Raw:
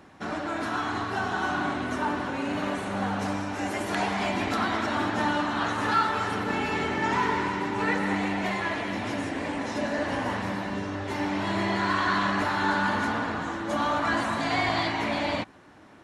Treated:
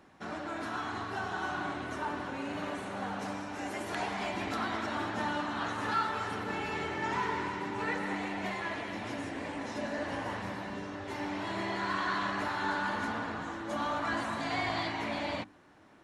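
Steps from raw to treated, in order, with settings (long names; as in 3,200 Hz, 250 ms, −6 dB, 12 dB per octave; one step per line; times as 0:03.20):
mains-hum notches 50/100/150/200/250/300 Hz
level −7 dB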